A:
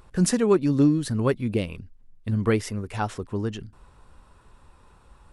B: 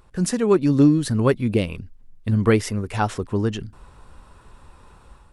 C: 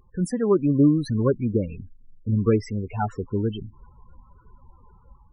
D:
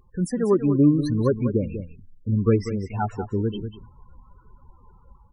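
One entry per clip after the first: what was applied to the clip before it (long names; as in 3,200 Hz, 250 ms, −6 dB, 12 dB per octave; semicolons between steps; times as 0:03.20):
automatic gain control gain up to 8 dB; level −2 dB
spectral peaks only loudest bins 16; level −2.5 dB
single-tap delay 192 ms −10.5 dB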